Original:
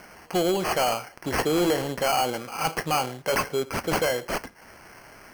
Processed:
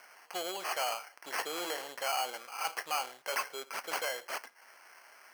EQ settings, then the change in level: high-pass 780 Hz 12 dB/octave; -7.0 dB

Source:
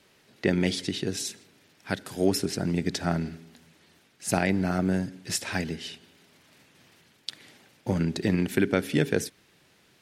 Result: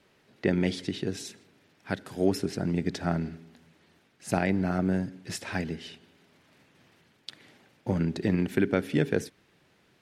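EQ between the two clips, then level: treble shelf 3.5 kHz -9.5 dB; -1.0 dB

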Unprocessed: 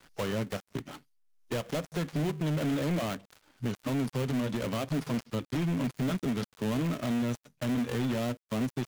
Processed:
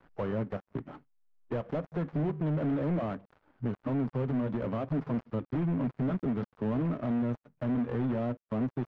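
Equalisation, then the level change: low-pass 1.3 kHz 12 dB/octave; 0.0 dB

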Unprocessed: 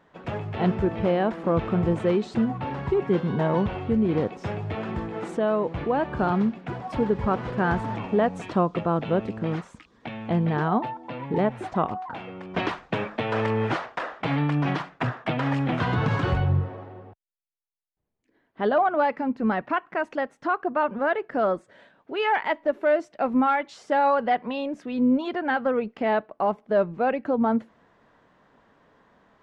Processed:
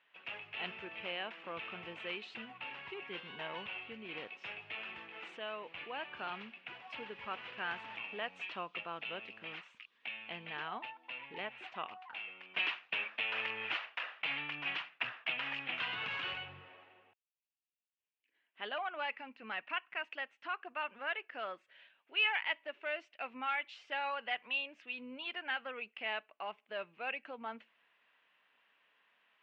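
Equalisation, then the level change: band-pass filter 2.7 kHz, Q 4.8; distance through air 54 m; +5.5 dB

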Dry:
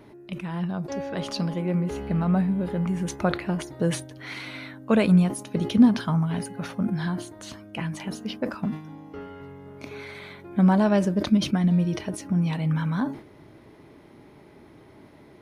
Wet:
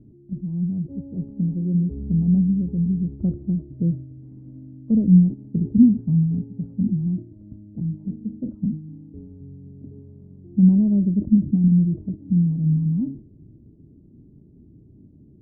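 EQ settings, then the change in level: four-pole ladder low-pass 320 Hz, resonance 25%; bass shelf 140 Hz +11 dB; +4.5 dB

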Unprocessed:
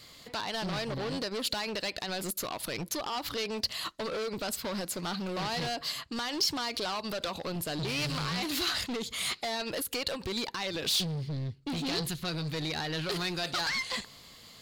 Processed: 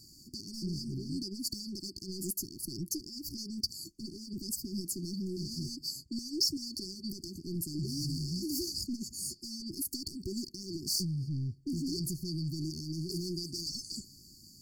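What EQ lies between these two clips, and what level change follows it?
brick-wall FIR band-stop 390–4400 Hz; 0.0 dB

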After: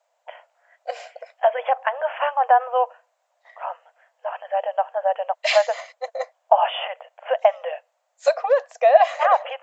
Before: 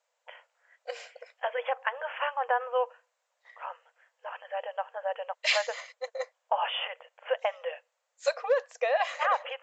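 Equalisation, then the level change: resonant high-pass 670 Hz, resonance Q 4.9; +2.5 dB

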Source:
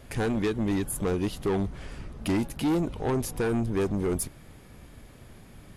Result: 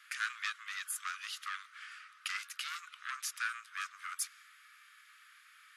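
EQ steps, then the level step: steep high-pass 1.2 kHz 96 dB/octave; dynamic bell 6 kHz, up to +6 dB, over -53 dBFS, Q 1.2; tilt EQ -3.5 dB/octave; +4.5 dB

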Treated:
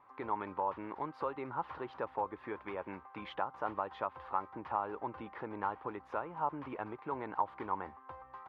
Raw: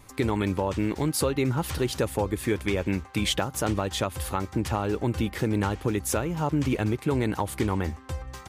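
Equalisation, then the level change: band-pass filter 1 kHz, Q 2.7; distance through air 320 m; +1.0 dB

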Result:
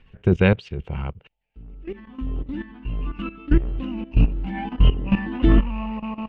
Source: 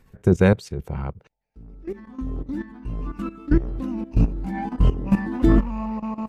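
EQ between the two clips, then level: resonant low-pass 2.9 kHz, resonance Q 5.9; bass shelf 66 Hz +7.5 dB; -2.0 dB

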